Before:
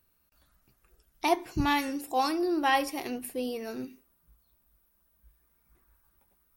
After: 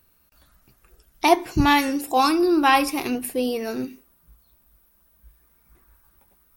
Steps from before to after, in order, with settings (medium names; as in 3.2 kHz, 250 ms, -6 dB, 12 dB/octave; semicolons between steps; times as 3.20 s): 2.17–3.15 s: comb 0.8 ms, depth 45%; trim +9 dB